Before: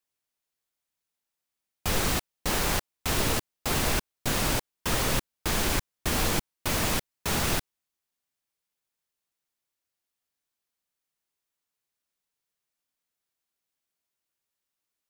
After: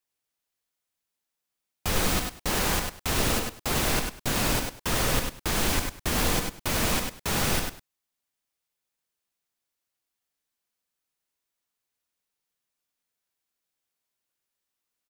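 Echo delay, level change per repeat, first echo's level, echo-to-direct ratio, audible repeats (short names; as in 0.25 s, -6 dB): 98 ms, no steady repeat, -5.0 dB, -5.0 dB, 2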